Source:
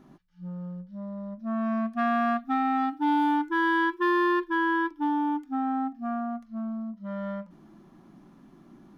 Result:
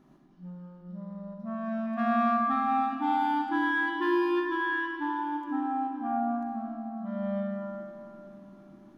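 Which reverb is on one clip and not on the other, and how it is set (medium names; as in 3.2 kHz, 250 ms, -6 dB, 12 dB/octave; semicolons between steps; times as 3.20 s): algorithmic reverb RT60 3.2 s, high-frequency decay 0.65×, pre-delay 20 ms, DRR -1 dB; trim -5.5 dB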